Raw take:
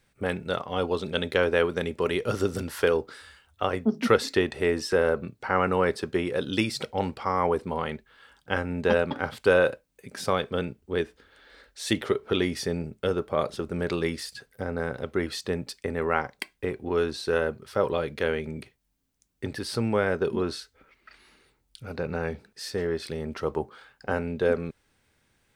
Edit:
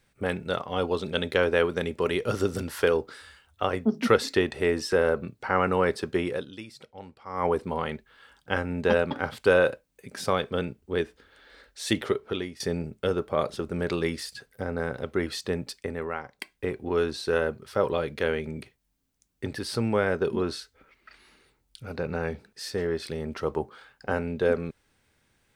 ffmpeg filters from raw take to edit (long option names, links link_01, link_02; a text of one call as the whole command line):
ffmpeg -i in.wav -filter_complex "[0:a]asplit=6[link_01][link_02][link_03][link_04][link_05][link_06];[link_01]atrim=end=6.57,asetpts=PTS-STARTPTS,afade=type=out:start_time=6.32:duration=0.25:curve=qua:silence=0.158489[link_07];[link_02]atrim=start=6.57:end=7.21,asetpts=PTS-STARTPTS,volume=-16dB[link_08];[link_03]atrim=start=7.21:end=12.6,asetpts=PTS-STARTPTS,afade=type=in:duration=0.25:curve=qua:silence=0.158489,afade=type=out:start_time=4.85:duration=0.54:silence=0.133352[link_09];[link_04]atrim=start=12.6:end=16.19,asetpts=PTS-STARTPTS,afade=type=in:duration=0.004:curve=hsin:silence=0.133352,afade=type=out:start_time=3.12:duration=0.47:silence=0.334965[link_10];[link_05]atrim=start=16.19:end=16.2,asetpts=PTS-STARTPTS,volume=-9.5dB[link_11];[link_06]atrim=start=16.2,asetpts=PTS-STARTPTS,afade=type=in:duration=0.47:silence=0.334965[link_12];[link_07][link_08][link_09][link_10][link_11][link_12]concat=n=6:v=0:a=1" out.wav